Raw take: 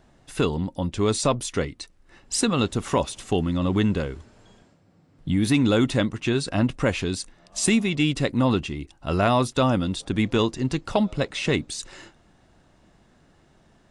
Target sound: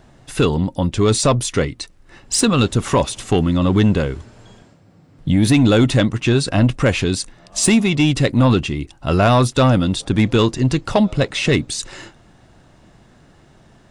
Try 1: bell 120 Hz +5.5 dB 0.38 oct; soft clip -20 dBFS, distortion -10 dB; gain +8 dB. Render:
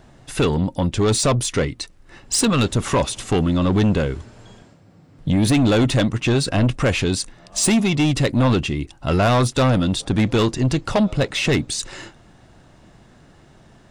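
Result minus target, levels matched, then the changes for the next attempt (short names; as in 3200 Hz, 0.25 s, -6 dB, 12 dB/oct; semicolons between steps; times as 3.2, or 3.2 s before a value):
soft clip: distortion +7 dB
change: soft clip -13.5 dBFS, distortion -17 dB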